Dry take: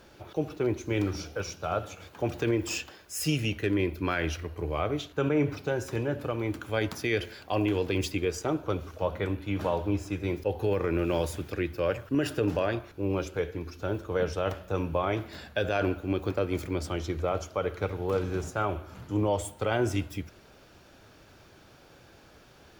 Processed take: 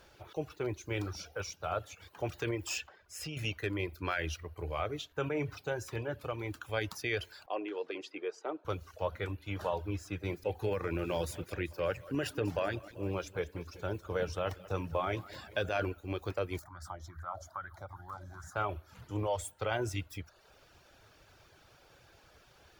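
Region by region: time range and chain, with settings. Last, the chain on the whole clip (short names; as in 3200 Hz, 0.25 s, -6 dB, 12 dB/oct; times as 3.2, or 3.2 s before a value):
2.87–3.37 LPF 3500 Hz 6 dB/oct + compressor 4:1, threshold -30 dBFS
7.46–8.65 HPF 290 Hz 24 dB/oct + tape spacing loss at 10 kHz 24 dB
10.06–15.85 bell 210 Hz +5 dB 0.93 oct + lo-fi delay 0.193 s, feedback 55%, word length 9-bit, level -14 dB
16.59–18.56 compressor 2:1, threshold -40 dBFS + fixed phaser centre 1100 Hz, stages 4 + LFO bell 2.4 Hz 530–1700 Hz +13 dB
whole clip: bell 240 Hz -9 dB 1.4 oct; reverb removal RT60 0.56 s; gain -3 dB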